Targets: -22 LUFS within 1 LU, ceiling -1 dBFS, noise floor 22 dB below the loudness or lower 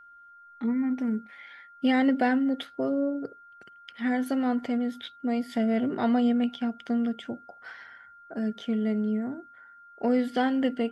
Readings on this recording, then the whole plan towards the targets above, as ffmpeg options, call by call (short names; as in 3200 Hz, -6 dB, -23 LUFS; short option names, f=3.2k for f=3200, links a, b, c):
steady tone 1400 Hz; tone level -49 dBFS; loudness -27.5 LUFS; peak -13.0 dBFS; loudness target -22.0 LUFS
-> -af "bandreject=f=1.4k:w=30"
-af "volume=5.5dB"